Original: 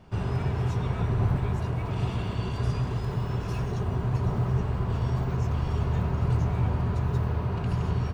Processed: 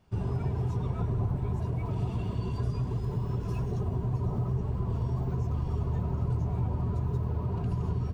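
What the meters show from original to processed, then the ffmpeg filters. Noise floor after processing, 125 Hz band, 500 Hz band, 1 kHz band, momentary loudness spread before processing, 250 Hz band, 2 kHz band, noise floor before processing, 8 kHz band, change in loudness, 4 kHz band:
-34 dBFS, -3.0 dB, -3.5 dB, -6.0 dB, 4 LU, -3.0 dB, under -10 dB, -32 dBFS, n/a, -3.0 dB, under -10 dB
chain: -af "afftdn=nr=13:nf=-33,highshelf=f=4.5k:g=10,acompressor=threshold=-27dB:ratio=2.5"

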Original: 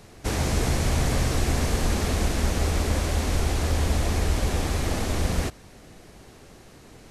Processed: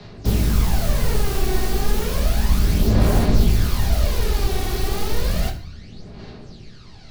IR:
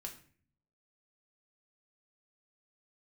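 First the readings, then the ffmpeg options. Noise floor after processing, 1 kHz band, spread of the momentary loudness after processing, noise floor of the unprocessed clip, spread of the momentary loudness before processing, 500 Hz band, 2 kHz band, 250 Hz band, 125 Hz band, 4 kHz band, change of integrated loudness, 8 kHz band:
-41 dBFS, +1.5 dB, 21 LU, -49 dBFS, 3 LU, +3.0 dB, 0.0 dB, +4.5 dB, +4.0 dB, +2.5 dB, +4.0 dB, -0.5 dB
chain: -filter_complex "[0:a]equalizer=f=140:t=o:w=2.4:g=3.5,aphaser=in_gain=1:out_gain=1:delay=2.7:decay=0.67:speed=0.32:type=sinusoidal,lowpass=f=4.4k:t=q:w=3.2,acrossover=split=130|470|1800[a][b][c][d];[d]aeval=exprs='(mod(20*val(0)+1,2)-1)/20':c=same[e];[a][b][c][e]amix=inputs=4:normalize=0[f];[1:a]atrim=start_sample=2205[g];[f][g]afir=irnorm=-1:irlink=0,volume=1.5dB"

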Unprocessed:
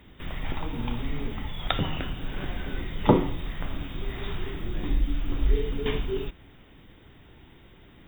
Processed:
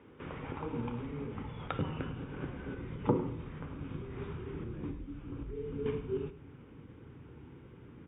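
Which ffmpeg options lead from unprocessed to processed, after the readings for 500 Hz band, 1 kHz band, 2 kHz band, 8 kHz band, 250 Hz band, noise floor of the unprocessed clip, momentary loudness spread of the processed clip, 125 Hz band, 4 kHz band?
-6.5 dB, -9.5 dB, -11.5 dB, n/a, -7.0 dB, -53 dBFS, 17 LU, -7.0 dB, -19.0 dB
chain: -filter_complex "[0:a]asubboost=boost=3.5:cutoff=240,acompressor=threshold=-24dB:ratio=3,highpass=150,equalizer=f=190:t=q:w=4:g=-7,equalizer=f=470:t=q:w=4:g=7,equalizer=f=680:t=q:w=4:g=-9,equalizer=f=1.9k:t=q:w=4:g=-10,lowpass=f=2.2k:w=0.5412,lowpass=f=2.2k:w=1.3066,asplit=2[a][b];[b]aecho=0:1:104:0.188[c];[a][c]amix=inputs=2:normalize=0"

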